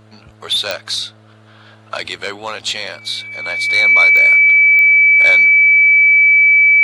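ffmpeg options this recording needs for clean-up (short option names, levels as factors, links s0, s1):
-af "adeclick=t=4,bandreject=f=108.1:t=h:w=4,bandreject=f=216.2:t=h:w=4,bandreject=f=324.3:t=h:w=4,bandreject=f=432.4:t=h:w=4,bandreject=f=540.5:t=h:w=4,bandreject=f=648.6:t=h:w=4,bandreject=f=2300:w=30"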